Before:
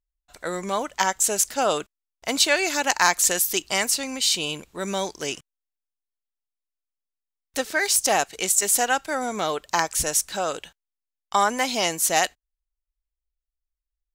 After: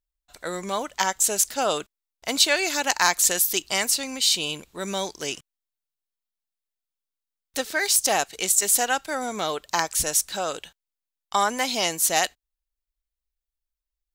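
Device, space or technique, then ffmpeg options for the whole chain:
presence and air boost: -af "equalizer=frequency=3900:width_type=o:width=0.77:gain=3.5,highshelf=frequency=11000:gain=6,volume=-2dB"

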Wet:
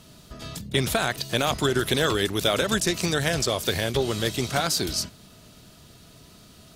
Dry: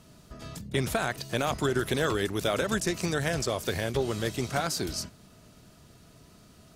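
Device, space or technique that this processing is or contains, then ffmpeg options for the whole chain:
presence and air boost: -af "equalizer=frequency=3600:width_type=o:width=0.9:gain=6,highshelf=frequency=9500:gain=6,volume=3.5dB"

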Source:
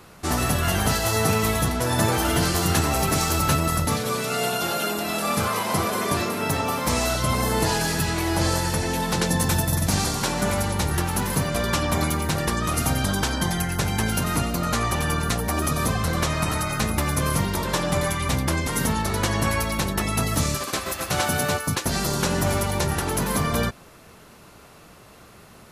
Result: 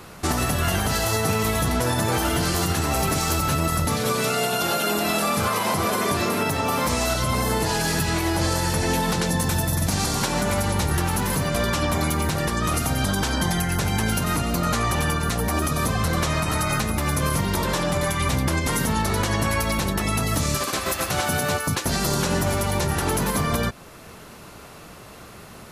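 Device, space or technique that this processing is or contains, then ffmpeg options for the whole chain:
stacked limiters: -af "alimiter=limit=-13.5dB:level=0:latency=1:release=496,alimiter=limit=-18.5dB:level=0:latency=1:release=111,volume=5.5dB"

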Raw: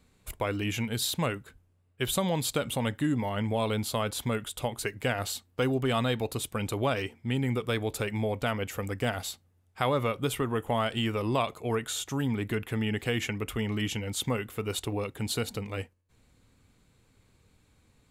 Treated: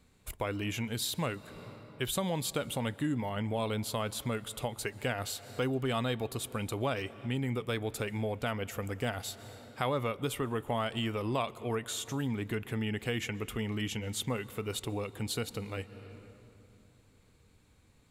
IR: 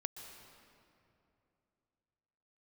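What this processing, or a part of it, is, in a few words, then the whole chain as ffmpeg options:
ducked reverb: -filter_complex "[0:a]asplit=3[link_01][link_02][link_03];[1:a]atrim=start_sample=2205[link_04];[link_02][link_04]afir=irnorm=-1:irlink=0[link_05];[link_03]apad=whole_len=798489[link_06];[link_05][link_06]sidechaincompress=threshold=-40dB:ratio=10:attack=47:release=336,volume=0dB[link_07];[link_01][link_07]amix=inputs=2:normalize=0,volume=-5.5dB"

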